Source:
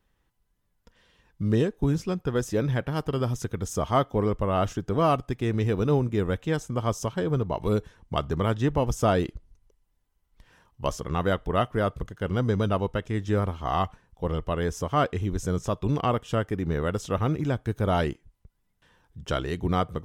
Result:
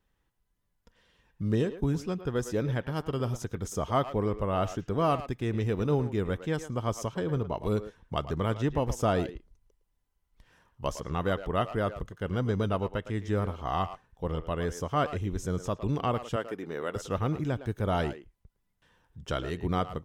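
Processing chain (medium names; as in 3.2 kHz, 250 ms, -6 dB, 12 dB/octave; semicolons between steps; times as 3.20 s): 16.36–16.96 s: high-pass 320 Hz 12 dB/octave; speakerphone echo 110 ms, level -11 dB; trim -4 dB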